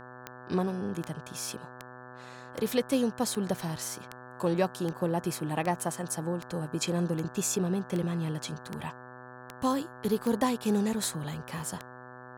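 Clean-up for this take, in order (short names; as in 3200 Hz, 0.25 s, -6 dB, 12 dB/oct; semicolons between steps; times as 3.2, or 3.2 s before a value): de-click; de-hum 125.1 Hz, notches 14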